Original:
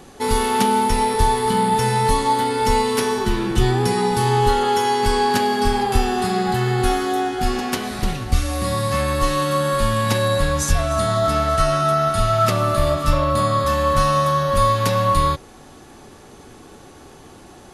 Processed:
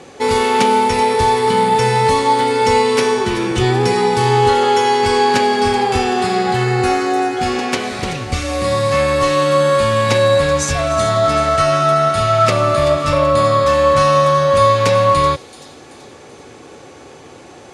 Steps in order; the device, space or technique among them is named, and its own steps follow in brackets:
0:06.64–0:07.37: notch filter 3,300 Hz, Q 5.1
car door speaker (loudspeaker in its box 97–8,700 Hz, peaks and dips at 200 Hz −6 dB, 510 Hz +7 dB, 2,300 Hz +6 dB)
delay with a high-pass on its return 382 ms, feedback 46%, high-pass 5,200 Hz, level −10 dB
level +4 dB

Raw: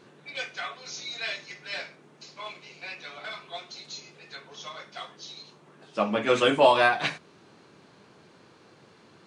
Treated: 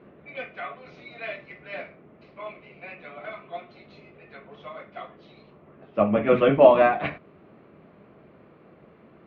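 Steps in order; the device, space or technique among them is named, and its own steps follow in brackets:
sub-octave bass pedal (sub-octave generator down 1 octave, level −3 dB; loudspeaker in its box 62–2,200 Hz, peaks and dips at 67 Hz −7 dB, 110 Hz −7 dB, 210 Hz +3 dB, 630 Hz +5 dB, 900 Hz −7 dB, 1,600 Hz −8 dB)
level +3 dB

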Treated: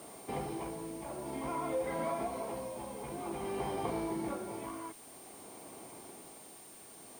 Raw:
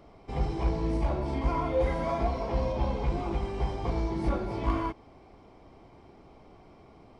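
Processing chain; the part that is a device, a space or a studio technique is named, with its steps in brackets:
medium wave at night (band-pass filter 200–4,000 Hz; downward compressor, threshold −36 dBFS, peak gain reduction 12.5 dB; amplitude tremolo 0.52 Hz, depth 61%; steady tone 9,000 Hz −58 dBFS; white noise bed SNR 18 dB)
level +4 dB

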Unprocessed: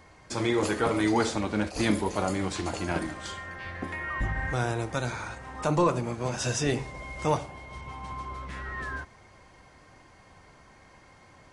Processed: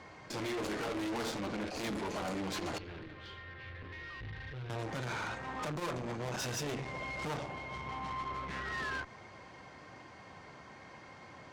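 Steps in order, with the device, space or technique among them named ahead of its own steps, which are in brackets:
valve radio (band-pass filter 110–5,300 Hz; tube saturation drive 38 dB, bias 0.4; saturating transformer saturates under 210 Hz)
0:02.78–0:04.70: drawn EQ curve 120 Hz 0 dB, 180 Hz −12 dB, 290 Hz −11 dB, 440 Hz −6 dB, 680 Hz −16 dB, 2,800 Hz −7 dB, 4,400 Hz −11 dB, 7,700 Hz −28 dB
level +4.5 dB

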